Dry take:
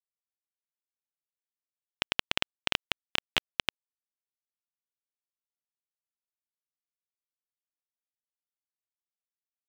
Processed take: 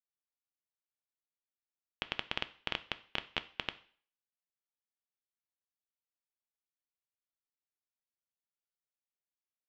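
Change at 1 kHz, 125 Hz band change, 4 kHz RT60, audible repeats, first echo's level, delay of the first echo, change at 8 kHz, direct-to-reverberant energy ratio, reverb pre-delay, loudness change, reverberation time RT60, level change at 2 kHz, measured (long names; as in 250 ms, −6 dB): −6.0 dB, −5.5 dB, 0.45 s, no echo audible, no echo audible, no echo audible, −18.0 dB, 12.0 dB, 3 ms, −8.0 dB, 0.50 s, −7.5 dB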